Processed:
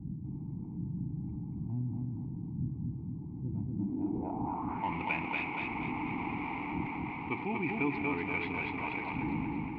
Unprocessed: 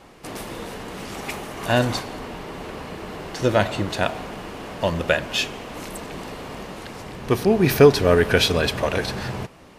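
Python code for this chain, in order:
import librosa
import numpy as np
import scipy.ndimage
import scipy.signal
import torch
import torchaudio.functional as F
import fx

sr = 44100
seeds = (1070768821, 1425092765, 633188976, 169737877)

p1 = scipy.signal.medfilt(x, 15)
p2 = fx.dmg_wind(p1, sr, seeds[0], corner_hz=200.0, level_db=-28.0)
p3 = fx.vowel_filter(p2, sr, vowel='u')
p4 = fx.peak_eq(p3, sr, hz=330.0, db=-12.0, octaves=1.4)
p5 = fx.notch(p4, sr, hz=1800.0, q=29.0)
p6 = p5 + fx.echo_feedback(p5, sr, ms=236, feedback_pct=40, wet_db=-4, dry=0)
p7 = fx.rider(p6, sr, range_db=5, speed_s=2.0)
p8 = fx.filter_sweep_lowpass(p7, sr, from_hz=150.0, to_hz=2400.0, start_s=3.69, end_s=4.95, q=2.6)
y = fx.env_flatten(p8, sr, amount_pct=50)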